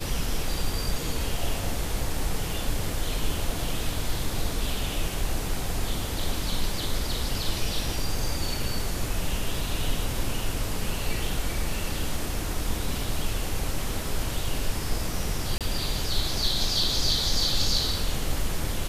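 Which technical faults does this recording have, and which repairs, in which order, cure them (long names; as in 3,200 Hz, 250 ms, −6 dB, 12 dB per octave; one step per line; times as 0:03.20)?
0:15.58–0:15.61: drop-out 27 ms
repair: repair the gap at 0:15.58, 27 ms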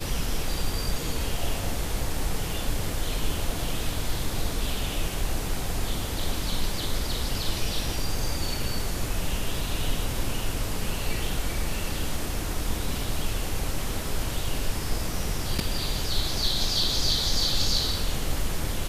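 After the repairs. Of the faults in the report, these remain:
none of them is left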